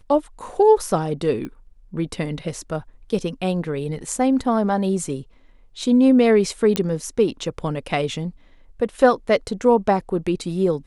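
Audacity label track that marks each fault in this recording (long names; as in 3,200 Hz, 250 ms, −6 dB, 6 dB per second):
1.450000	1.450000	click −20 dBFS
6.760000	6.760000	click −6 dBFS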